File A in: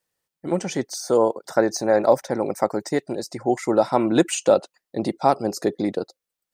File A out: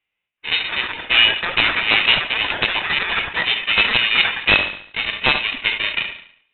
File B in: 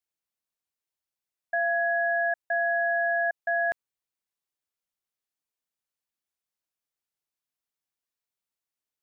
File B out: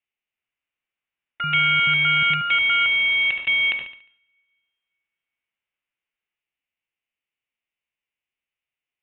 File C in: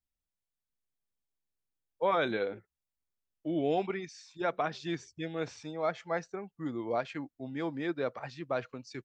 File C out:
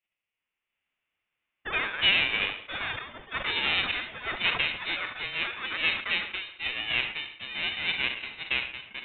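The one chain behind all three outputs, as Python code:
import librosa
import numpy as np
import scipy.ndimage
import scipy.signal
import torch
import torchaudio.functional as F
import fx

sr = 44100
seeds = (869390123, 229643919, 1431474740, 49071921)

y = fx.envelope_flatten(x, sr, power=0.1)
y = scipy.signal.sosfilt(scipy.signal.butter(2, 150.0, 'highpass', fs=sr, output='sos'), y)
y = fx.env_lowpass_down(y, sr, base_hz=2600.0, full_db=-18.5)
y = fx.band_shelf(y, sr, hz=1300.0, db=11.5, octaves=1.3)
y = (np.mod(10.0 ** (2.5 / 20.0) * y + 1.0, 2.0) - 1.0) / 10.0 ** (2.5 / 20.0)
y = fx.echo_pitch(y, sr, ms=378, semitones=7, count=3, db_per_echo=-6.0)
y = fx.echo_feedback(y, sr, ms=71, feedback_pct=58, wet_db=-20.0)
y = fx.rev_double_slope(y, sr, seeds[0], early_s=0.75, late_s=2.8, knee_db=-24, drr_db=19.5)
y = fx.freq_invert(y, sr, carrier_hz=3900)
y = fx.sustainer(y, sr, db_per_s=100.0)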